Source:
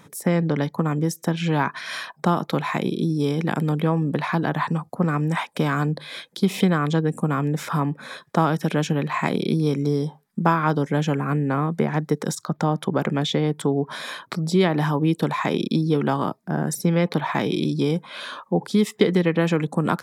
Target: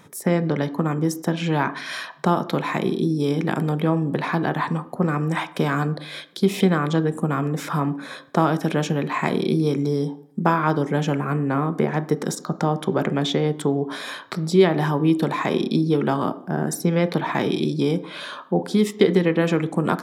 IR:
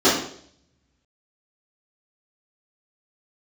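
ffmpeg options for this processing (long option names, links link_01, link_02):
-filter_complex "[0:a]asplit=2[link_01][link_02];[1:a]atrim=start_sample=2205,lowshelf=frequency=200:gain=-9.5,highshelf=frequency=3700:gain=-9.5[link_03];[link_02][link_03]afir=irnorm=-1:irlink=0,volume=-31dB[link_04];[link_01][link_04]amix=inputs=2:normalize=0"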